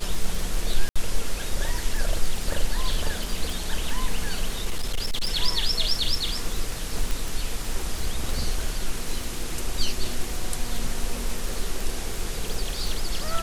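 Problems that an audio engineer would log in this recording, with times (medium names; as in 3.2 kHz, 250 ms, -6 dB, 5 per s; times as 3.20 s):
crackle 45 per s -26 dBFS
0.89–0.96 s: dropout 66 ms
4.65–5.33 s: clipped -20 dBFS
7.11 s: pop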